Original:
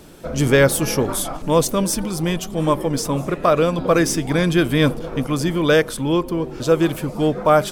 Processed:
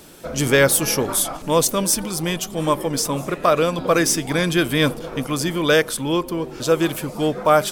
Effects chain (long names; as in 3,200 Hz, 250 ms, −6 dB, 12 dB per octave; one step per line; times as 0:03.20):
spectral tilt +1.5 dB per octave